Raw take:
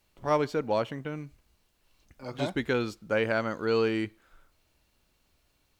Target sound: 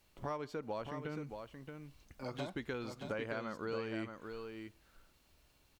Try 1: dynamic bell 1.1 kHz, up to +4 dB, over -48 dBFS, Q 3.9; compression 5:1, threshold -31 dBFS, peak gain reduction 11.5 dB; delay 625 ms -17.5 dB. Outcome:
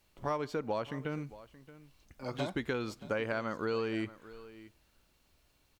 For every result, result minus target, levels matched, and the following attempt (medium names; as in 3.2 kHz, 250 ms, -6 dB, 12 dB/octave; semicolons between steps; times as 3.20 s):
echo-to-direct -11 dB; compression: peak gain reduction -6.5 dB
dynamic bell 1.1 kHz, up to +4 dB, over -48 dBFS, Q 3.9; compression 5:1, threshold -31 dBFS, peak gain reduction 11.5 dB; delay 625 ms -6.5 dB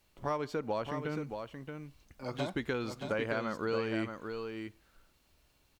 compression: peak gain reduction -6.5 dB
dynamic bell 1.1 kHz, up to +4 dB, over -48 dBFS, Q 3.9; compression 5:1, threshold -39 dBFS, peak gain reduction 18 dB; delay 625 ms -6.5 dB